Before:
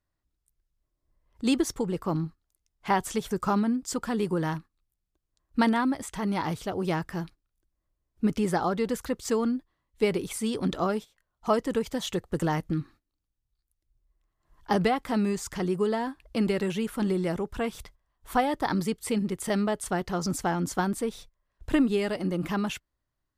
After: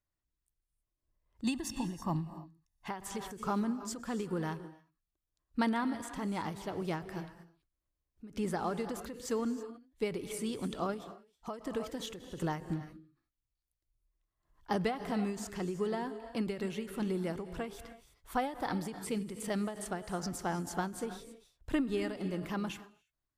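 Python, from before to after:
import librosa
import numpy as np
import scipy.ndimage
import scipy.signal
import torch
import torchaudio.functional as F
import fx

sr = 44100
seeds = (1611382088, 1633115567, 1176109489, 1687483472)

y = fx.comb(x, sr, ms=1.1, depth=0.88, at=(1.44, 2.88))
y = fx.rev_gated(y, sr, seeds[0], gate_ms=350, shape='rising', drr_db=10.5)
y = fx.end_taper(y, sr, db_per_s=130.0)
y = y * librosa.db_to_amplitude(-7.5)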